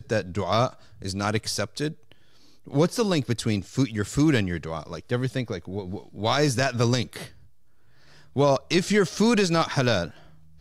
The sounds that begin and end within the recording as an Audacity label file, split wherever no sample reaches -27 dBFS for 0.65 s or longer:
2.730000	7.230000	sound